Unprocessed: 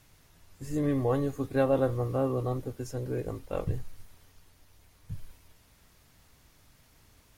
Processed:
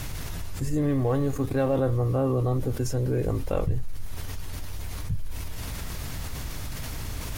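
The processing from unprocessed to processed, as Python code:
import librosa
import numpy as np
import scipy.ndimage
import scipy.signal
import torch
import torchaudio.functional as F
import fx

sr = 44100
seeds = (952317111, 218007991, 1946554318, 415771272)

y = fx.law_mismatch(x, sr, coded='A', at=(0.81, 1.77))
y = fx.low_shelf(y, sr, hz=130.0, db=8.0)
y = fx.env_flatten(y, sr, amount_pct=70)
y = F.gain(torch.from_numpy(y), -1.5).numpy()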